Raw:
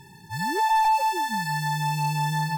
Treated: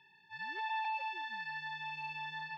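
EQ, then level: band-pass filter 2.9 kHz, Q 2; distance through air 320 m; 0.0 dB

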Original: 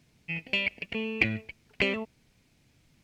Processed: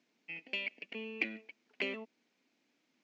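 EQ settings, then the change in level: elliptic band-pass 250–7000 Hz, stop band 40 dB; dynamic bell 990 Hz, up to -4 dB, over -43 dBFS, Q 0.73; distance through air 59 m; -7.0 dB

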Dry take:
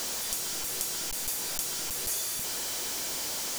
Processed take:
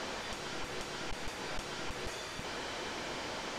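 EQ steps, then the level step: low-pass 2.4 kHz 12 dB/octave; +2.5 dB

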